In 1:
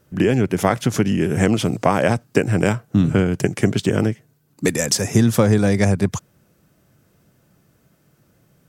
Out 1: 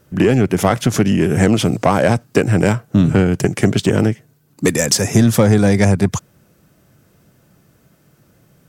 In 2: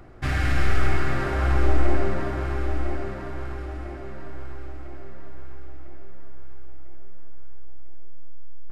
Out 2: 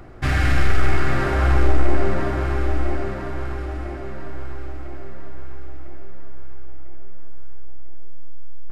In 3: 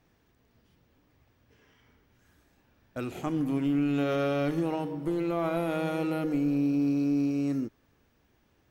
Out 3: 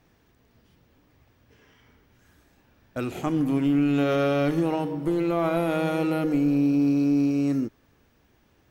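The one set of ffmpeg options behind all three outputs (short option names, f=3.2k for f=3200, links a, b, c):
-af "acontrast=50,volume=-1dB"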